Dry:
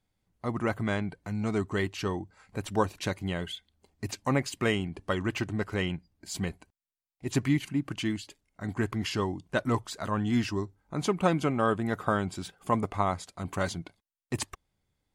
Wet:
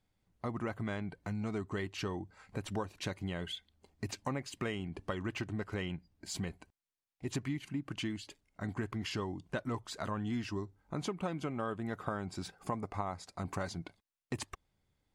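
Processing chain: 12.11–13.86 thirty-one-band EQ 800 Hz +3 dB, 3150 Hz -8 dB, 5000 Hz +4 dB; compressor 4:1, threshold -35 dBFS, peak gain reduction 14 dB; high shelf 8700 Hz -7 dB

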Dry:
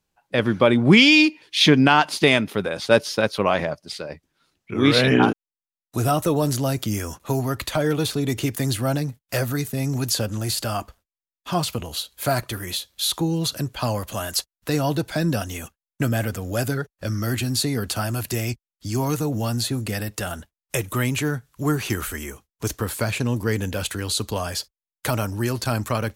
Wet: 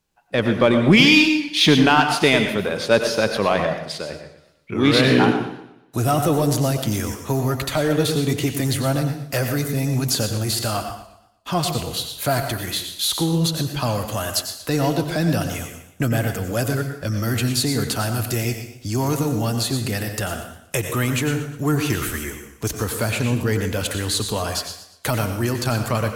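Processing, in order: in parallel at -4.5 dB: soft clip -21 dBFS, distortion -6 dB; on the sum: plate-style reverb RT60 0.54 s, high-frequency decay 1×, pre-delay 80 ms, DRR 7 dB; warbling echo 0.119 s, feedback 41%, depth 123 cents, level -14 dB; gain -1.5 dB

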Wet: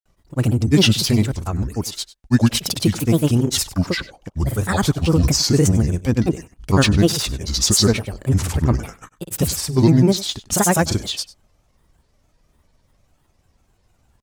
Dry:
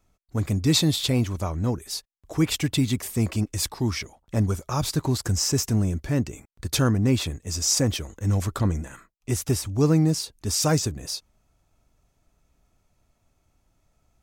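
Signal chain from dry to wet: grains 0.1 s, grains 20/s, pitch spread up and down by 7 st; on a send: echo 98 ms -18.5 dB; on the sum: gain +7.5 dB

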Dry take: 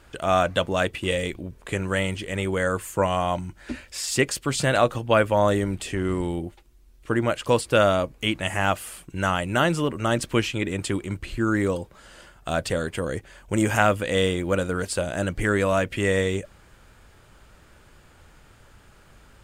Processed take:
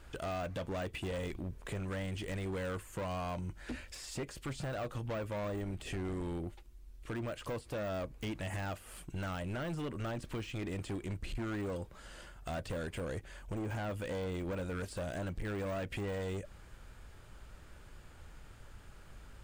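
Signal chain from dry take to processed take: de-esser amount 90%; low shelf 79 Hz +8.5 dB; compressor 3:1, threshold -28 dBFS, peak gain reduction 10 dB; hard clip -29.5 dBFS, distortion -9 dB; gain -5 dB

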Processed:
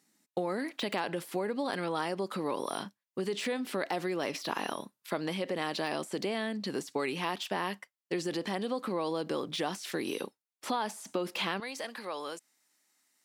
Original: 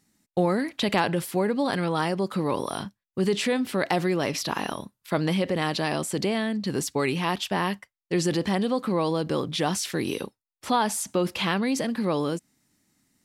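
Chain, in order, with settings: compressor 6:1, threshold -26 dBFS, peak gain reduction 8.5 dB; HPF 260 Hz 12 dB/oct, from 11.6 s 670 Hz; de-esser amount 80%; gain -1.5 dB

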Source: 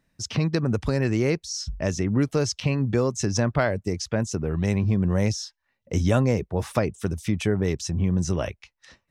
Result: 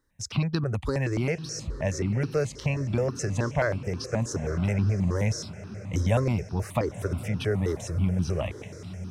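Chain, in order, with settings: on a send: diffused feedback echo 0.984 s, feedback 45%, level -13 dB; on the sum: step phaser 9.4 Hz 680–2100 Hz

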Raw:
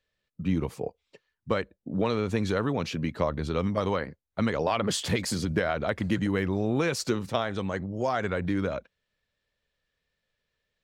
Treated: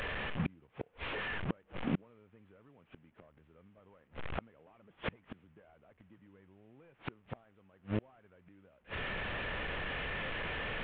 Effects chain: delta modulation 16 kbps, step -34 dBFS; flipped gate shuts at -25 dBFS, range -36 dB; gain +2.5 dB

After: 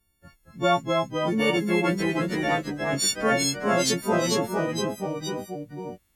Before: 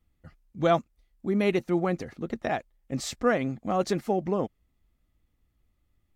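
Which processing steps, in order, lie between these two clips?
frequency quantiser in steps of 4 st; echoes that change speed 0.215 s, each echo -1 st, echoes 3

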